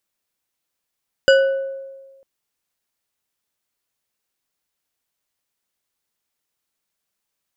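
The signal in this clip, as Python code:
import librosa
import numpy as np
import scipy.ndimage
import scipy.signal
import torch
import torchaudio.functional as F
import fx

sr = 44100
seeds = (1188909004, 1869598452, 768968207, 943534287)

y = fx.strike_glass(sr, length_s=0.95, level_db=-8.0, body='bar', hz=541.0, decay_s=1.39, tilt_db=5.0, modes=5)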